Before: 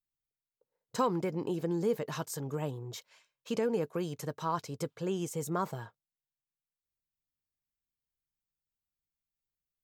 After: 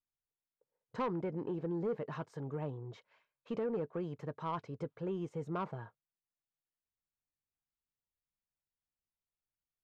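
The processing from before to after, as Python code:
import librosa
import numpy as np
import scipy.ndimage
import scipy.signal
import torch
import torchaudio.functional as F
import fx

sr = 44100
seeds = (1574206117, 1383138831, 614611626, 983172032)

y = scipy.signal.sosfilt(scipy.signal.butter(2, 1900.0, 'lowpass', fs=sr, output='sos'), x)
y = 10.0 ** (-25.5 / 20.0) * np.tanh(y / 10.0 ** (-25.5 / 20.0))
y = y * librosa.db_to_amplitude(-3.0)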